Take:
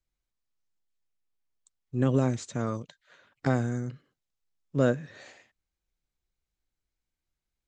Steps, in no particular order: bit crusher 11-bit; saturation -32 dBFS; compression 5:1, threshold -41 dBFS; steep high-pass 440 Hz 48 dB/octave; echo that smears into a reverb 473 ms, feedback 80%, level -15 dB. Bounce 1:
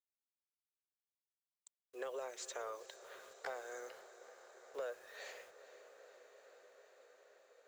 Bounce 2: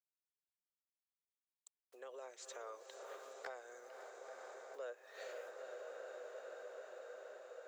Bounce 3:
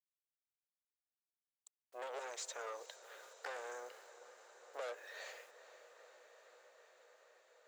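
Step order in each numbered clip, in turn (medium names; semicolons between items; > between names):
steep high-pass > compression > bit crusher > echo that smears into a reverb > saturation; bit crusher > echo that smears into a reverb > compression > steep high-pass > saturation; bit crusher > saturation > steep high-pass > compression > echo that smears into a reverb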